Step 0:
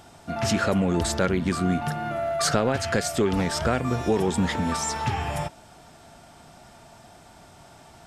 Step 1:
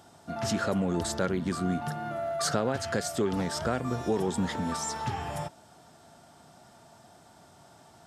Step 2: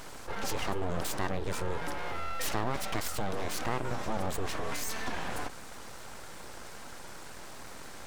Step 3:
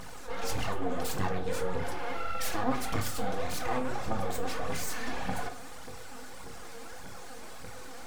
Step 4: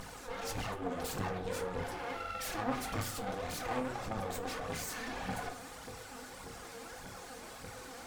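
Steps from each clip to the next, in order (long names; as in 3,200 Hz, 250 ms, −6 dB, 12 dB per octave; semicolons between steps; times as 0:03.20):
high-pass filter 94 Hz; parametric band 2,400 Hz −6 dB 0.61 octaves; level −5 dB
full-wave rectification; envelope flattener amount 50%; level −3.5 dB
phase shifter 1.7 Hz, delay 4.5 ms, feedback 67%; convolution reverb RT60 0.45 s, pre-delay 3 ms, DRR 1.5 dB; level −4.5 dB
tube saturation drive 20 dB, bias 0.75; level +4.5 dB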